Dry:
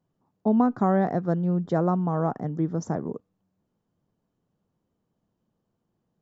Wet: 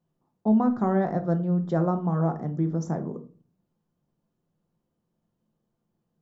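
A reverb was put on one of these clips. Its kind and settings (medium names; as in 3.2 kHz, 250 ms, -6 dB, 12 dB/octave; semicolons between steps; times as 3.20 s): simulated room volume 250 m³, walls furnished, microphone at 0.85 m; trim -3 dB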